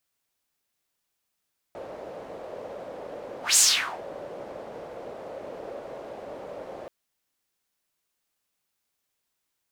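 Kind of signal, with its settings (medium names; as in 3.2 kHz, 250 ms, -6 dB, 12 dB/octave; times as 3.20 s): whoosh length 5.13 s, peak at 1.82 s, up 0.16 s, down 0.47 s, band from 550 Hz, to 7.6 kHz, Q 3.5, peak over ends 22.5 dB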